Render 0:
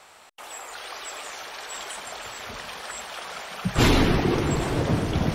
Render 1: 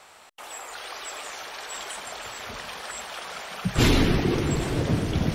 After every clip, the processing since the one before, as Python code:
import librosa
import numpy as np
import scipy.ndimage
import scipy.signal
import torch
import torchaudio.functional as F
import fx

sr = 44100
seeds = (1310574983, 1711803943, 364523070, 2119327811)

y = fx.dynamic_eq(x, sr, hz=910.0, q=0.85, threshold_db=-36.0, ratio=4.0, max_db=-5)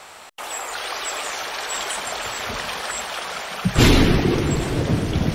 y = fx.rider(x, sr, range_db=3, speed_s=2.0)
y = F.gain(torch.from_numpy(y), 6.0).numpy()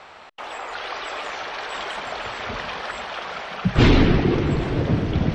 y = fx.air_absorb(x, sr, metres=200.0)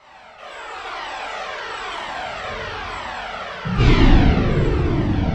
y = fx.rev_plate(x, sr, seeds[0], rt60_s=2.6, hf_ratio=0.65, predelay_ms=0, drr_db=-9.5)
y = fx.comb_cascade(y, sr, direction='falling', hz=1.0)
y = F.gain(torch.from_numpy(y), -4.0).numpy()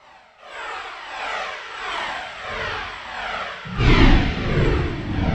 y = x * (1.0 - 0.68 / 2.0 + 0.68 / 2.0 * np.cos(2.0 * np.pi * 1.5 * (np.arange(len(x)) / sr)))
y = fx.echo_wet_highpass(y, sr, ms=116, feedback_pct=78, hz=1900.0, wet_db=-9)
y = fx.dynamic_eq(y, sr, hz=1900.0, q=0.72, threshold_db=-41.0, ratio=4.0, max_db=4)